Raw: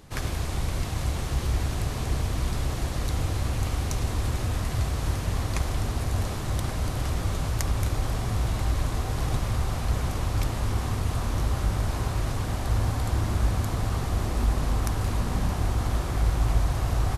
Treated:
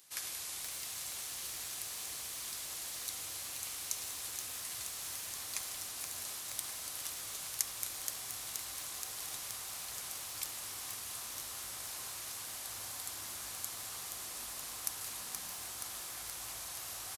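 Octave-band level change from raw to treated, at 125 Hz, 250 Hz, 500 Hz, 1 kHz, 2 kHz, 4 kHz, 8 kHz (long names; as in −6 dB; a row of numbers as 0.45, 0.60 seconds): −36.5, −28.0, −21.5, −16.5, −10.0, −4.0, +1.5 decibels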